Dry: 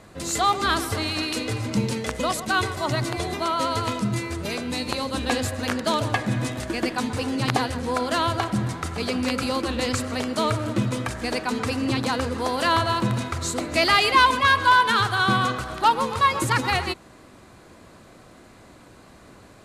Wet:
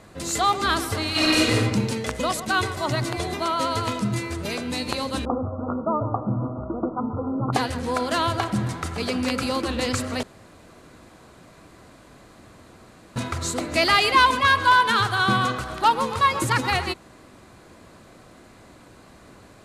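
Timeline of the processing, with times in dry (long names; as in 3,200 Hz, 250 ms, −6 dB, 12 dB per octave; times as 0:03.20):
0:01.10–0:01.54: thrown reverb, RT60 1.1 s, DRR −8 dB
0:05.25–0:07.53: Chebyshev low-pass filter 1,400 Hz, order 10
0:10.23–0:13.16: fill with room tone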